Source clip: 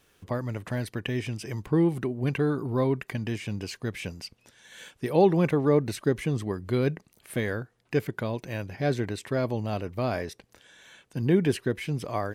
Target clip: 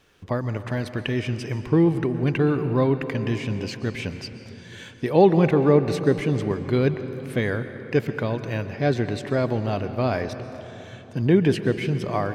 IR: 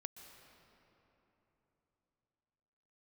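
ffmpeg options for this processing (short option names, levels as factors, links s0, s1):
-filter_complex "[0:a]asplit=2[s0][s1];[1:a]atrim=start_sample=2205,lowpass=6800[s2];[s1][s2]afir=irnorm=-1:irlink=0,volume=2.99[s3];[s0][s3]amix=inputs=2:normalize=0,volume=0.631"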